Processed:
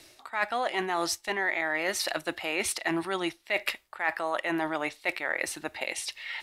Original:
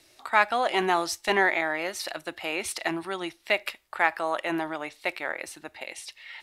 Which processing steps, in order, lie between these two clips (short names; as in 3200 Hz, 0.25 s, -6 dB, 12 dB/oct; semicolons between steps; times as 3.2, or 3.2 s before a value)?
dynamic EQ 1900 Hz, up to +5 dB, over -42 dBFS, Q 5.6; reverse; compressor 12:1, threshold -31 dBFS, peak gain reduction 18 dB; reverse; gain +6 dB